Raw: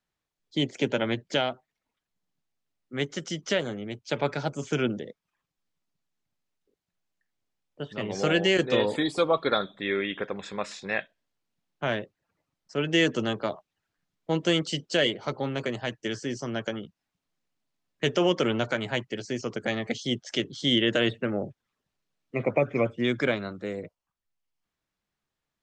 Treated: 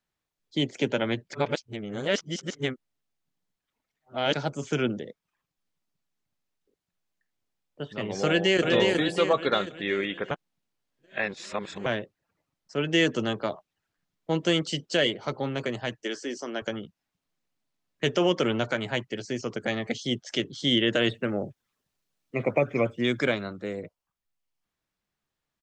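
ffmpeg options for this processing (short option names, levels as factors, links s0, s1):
-filter_complex "[0:a]asplit=2[s0][s1];[s1]afade=t=in:st=8.26:d=0.01,afade=t=out:st=8.66:d=0.01,aecho=0:1:360|720|1080|1440|1800|2160|2520:0.707946|0.353973|0.176986|0.0884932|0.0442466|0.0221233|0.0110617[s2];[s0][s2]amix=inputs=2:normalize=0,asettb=1/sr,asplit=3[s3][s4][s5];[s3]atrim=end=16.034[s6];[s4]atrim=start=16.03:end=16.62,asetpts=PTS-STARTPTS,afade=t=in:d=0.004:c=qsin,afade=t=out:st=0.586:d=0.004:c=qsin,highpass=f=260:w=0.5412,highpass=f=260:w=1.3066[s7];[s5]atrim=start=16.616[s8];[s6][s7]acrossfade=d=0.004:c1=hsin:c2=qsin[s9];[s9][s8]acrossfade=d=0.004:c1=qsin:c2=hsin,asettb=1/sr,asplit=3[s10][s11][s12];[s10]atrim=end=21.044[s13];[s11]atrim=start=21.04:end=23.43,asetpts=PTS-STARTPTS,afade=t=in:d=0.004:c=qsin,afade=t=out:st=2.386:d=0.004:c=qsin,highshelf=f=6000:g=8.5[s14];[s12]atrim=start=23.426[s15];[s13][s14]acrossfade=d=0.004:c1=hsin:c2=qsin[s16];[s16][s15]acrossfade=d=0.004:c1=qsin:c2=hsin,asplit=5[s17][s18][s19][s20][s21];[s17]atrim=end=1.332[s22];[s18]atrim=start=1.328:end=4.342,asetpts=PTS-STARTPTS,areverse[s23];[s19]atrim=start=4.338:end=10.312[s24];[s20]atrim=start=10.308:end=11.862,asetpts=PTS-STARTPTS,areverse[s25];[s21]atrim=start=11.858[s26];[s22][s23]acrossfade=d=0.004:c1=hsin:c2=hsin[s27];[s27][s24]acrossfade=d=0.004:c1=hsin:c2=hsin[s28];[s28][s25]acrossfade=d=0.004:c1=hsin:c2=hsin[s29];[s29][s26]acrossfade=d=0.004:c1=hsin:c2=hsin"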